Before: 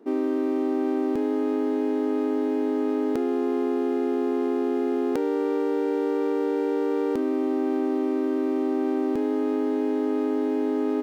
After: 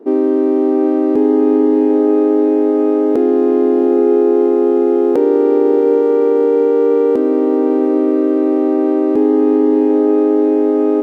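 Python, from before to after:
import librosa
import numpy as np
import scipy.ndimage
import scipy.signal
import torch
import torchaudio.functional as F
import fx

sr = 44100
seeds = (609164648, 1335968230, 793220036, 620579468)

y = fx.peak_eq(x, sr, hz=450.0, db=13.5, octaves=2.4)
y = fx.echo_diffused(y, sr, ms=749, feedback_pct=48, wet_db=-9)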